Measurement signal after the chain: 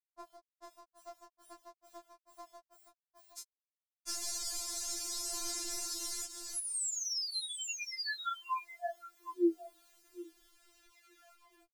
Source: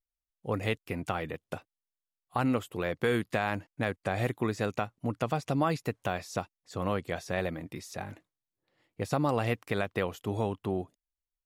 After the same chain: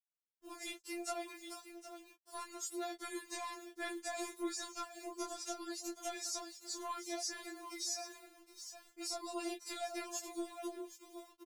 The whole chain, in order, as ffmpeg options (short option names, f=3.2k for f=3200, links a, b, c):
-af "lowshelf=f=82:g=-7.5,acontrast=44,lowpass=6.1k,aexciter=amount=8.7:drive=8:freq=4.5k,aecho=1:1:766:0.211,aphaser=in_gain=1:out_gain=1:delay=4.3:decay=0.28:speed=0.18:type=sinusoidal,acrusher=bits=7:mix=0:aa=0.000001,acompressor=threshold=-23dB:ratio=20,flanger=delay=18:depth=7.3:speed=0.67,afftfilt=real='re*4*eq(mod(b,16),0)':imag='im*4*eq(mod(b,16),0)':win_size=2048:overlap=0.75,volume=-7dB"